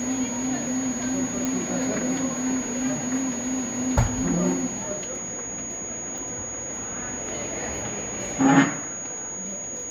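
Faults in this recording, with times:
tone 6700 Hz -31 dBFS
1.45 pop
6.18 pop

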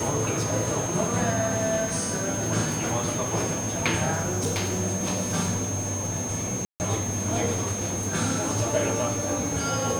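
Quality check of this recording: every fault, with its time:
tone 6400 Hz -31 dBFS
4.12–4.81 clipped -22 dBFS
6.65–6.8 gap 0.149 s

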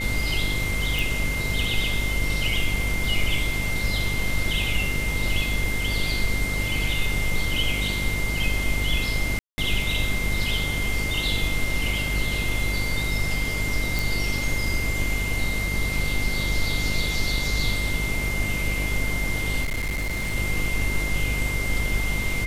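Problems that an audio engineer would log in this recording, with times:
buzz 50 Hz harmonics 13 -29 dBFS
tone 2100 Hz -28 dBFS
0.99 pop
9.39–9.58 gap 0.19 s
13.99 pop
19.63–20.36 clipped -23 dBFS

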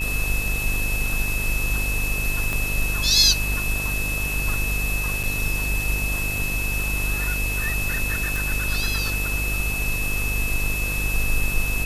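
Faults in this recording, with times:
buzz 50 Hz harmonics 30 -28 dBFS
tone 2600 Hz -26 dBFS
2.53 pop -12 dBFS
5.23–5.24 gap 6.4 ms
8.36 pop

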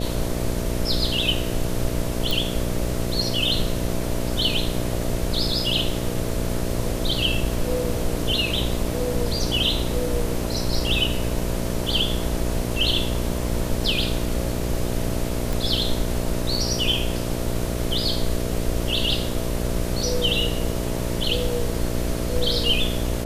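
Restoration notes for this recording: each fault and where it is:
buzz 60 Hz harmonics 11 -27 dBFS
2.31 pop
15.53 pop

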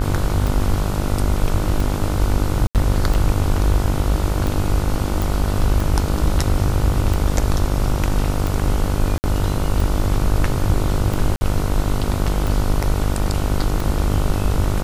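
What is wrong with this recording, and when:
buzz 50 Hz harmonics 30 -22 dBFS
tick 45 rpm
2.67–2.75 gap 78 ms
5.22 pop
9.18–9.24 gap 59 ms
11.36–11.41 gap 50 ms

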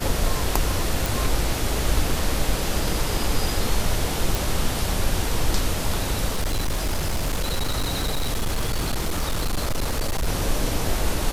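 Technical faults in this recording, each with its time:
1.06 pop
4.35 pop
6.28–10.28 clipped -19.5 dBFS

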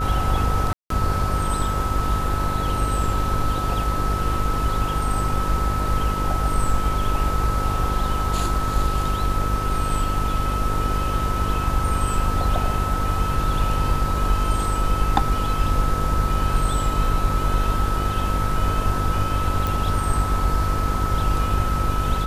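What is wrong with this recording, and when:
buzz 50 Hz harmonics 11 -26 dBFS
tone 1300 Hz -26 dBFS
0.73–0.9 gap 0.173 s
19.67 pop

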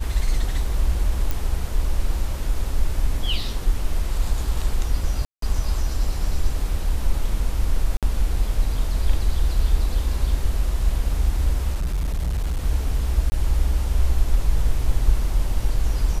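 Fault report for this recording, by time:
1.31 pop
5.25–5.42 gap 0.173 s
7.97–8.03 gap 57 ms
11.74–12.63 clipped -19.5 dBFS
13.3–13.32 gap 20 ms

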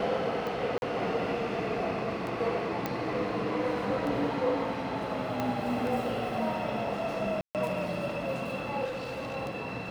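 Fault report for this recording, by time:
tick 33 1/3 rpm
0.78–0.82 gap 41 ms
2.86 pop -16 dBFS
5.4 pop -17 dBFS
7.41–7.55 gap 0.138 s
8.84–9.37 clipped -32 dBFS

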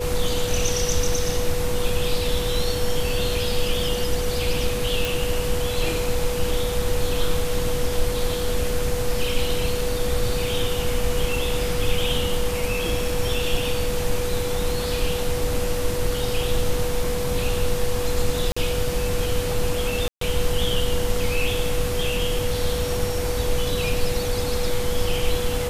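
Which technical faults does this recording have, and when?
tone 490 Hz -26 dBFS
5.05 pop
18.52–18.57 gap 45 ms
20.08–20.21 gap 0.133 s

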